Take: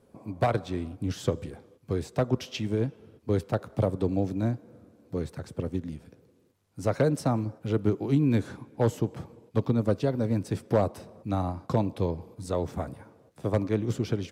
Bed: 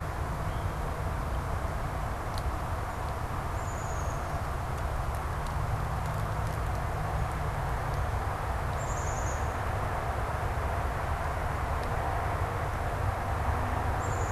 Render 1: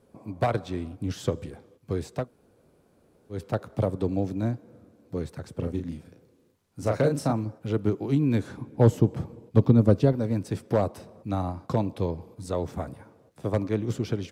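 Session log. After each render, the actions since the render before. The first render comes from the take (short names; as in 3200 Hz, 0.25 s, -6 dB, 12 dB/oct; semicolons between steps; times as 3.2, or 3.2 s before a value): 2.22–3.37 room tone, crossfade 0.16 s; 5.53–7.33 doubler 35 ms -5 dB; 8.57–10.13 low shelf 470 Hz +8.5 dB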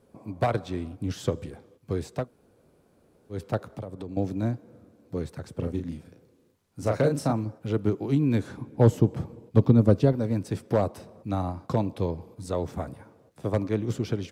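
3.6–4.17 compressor 4:1, threshold -34 dBFS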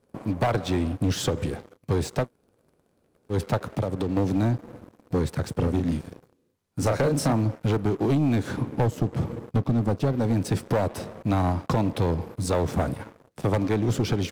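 compressor 8:1, threshold -26 dBFS, peak gain reduction 14.5 dB; sample leveller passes 3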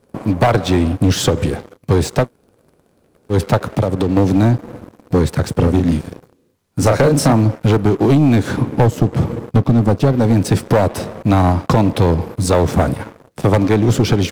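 gain +10.5 dB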